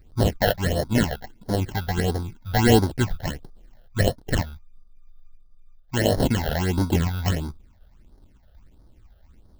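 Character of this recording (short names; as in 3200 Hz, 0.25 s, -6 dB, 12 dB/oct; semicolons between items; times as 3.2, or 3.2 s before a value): aliases and images of a low sample rate 1200 Hz, jitter 0%; phasing stages 8, 1.5 Hz, lowest notch 290–2600 Hz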